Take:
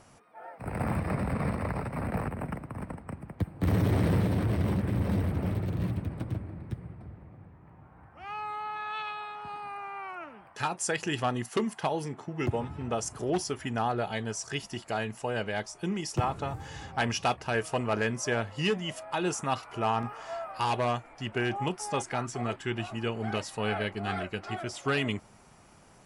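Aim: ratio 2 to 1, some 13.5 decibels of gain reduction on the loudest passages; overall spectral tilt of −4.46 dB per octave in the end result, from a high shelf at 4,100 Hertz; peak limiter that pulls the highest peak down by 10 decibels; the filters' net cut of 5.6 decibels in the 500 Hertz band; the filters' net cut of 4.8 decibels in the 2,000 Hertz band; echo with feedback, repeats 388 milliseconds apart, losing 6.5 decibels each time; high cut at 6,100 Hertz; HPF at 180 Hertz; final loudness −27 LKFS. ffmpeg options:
ffmpeg -i in.wav -af "highpass=180,lowpass=6100,equalizer=frequency=500:width_type=o:gain=-7,equalizer=frequency=2000:width_type=o:gain=-7,highshelf=frequency=4100:gain=4.5,acompressor=threshold=-53dB:ratio=2,alimiter=level_in=14.5dB:limit=-24dB:level=0:latency=1,volume=-14.5dB,aecho=1:1:388|776|1164|1552|1940|2328:0.473|0.222|0.105|0.0491|0.0231|0.0109,volume=22dB" out.wav

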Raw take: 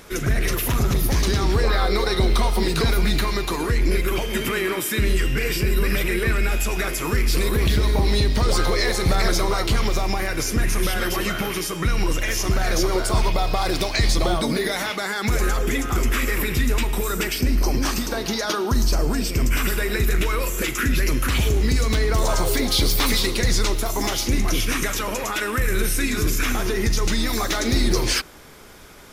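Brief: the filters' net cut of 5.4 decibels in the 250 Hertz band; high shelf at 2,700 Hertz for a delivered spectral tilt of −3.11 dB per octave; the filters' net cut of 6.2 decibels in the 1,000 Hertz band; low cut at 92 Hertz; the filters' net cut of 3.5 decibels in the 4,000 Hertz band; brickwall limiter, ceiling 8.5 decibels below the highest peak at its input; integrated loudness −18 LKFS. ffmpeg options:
ffmpeg -i in.wav -af "highpass=92,equalizer=frequency=250:width_type=o:gain=-7,equalizer=frequency=1000:width_type=o:gain=-8.5,highshelf=frequency=2700:gain=4.5,equalizer=frequency=4000:width_type=o:gain=-8,volume=9.5dB,alimiter=limit=-8.5dB:level=0:latency=1" out.wav

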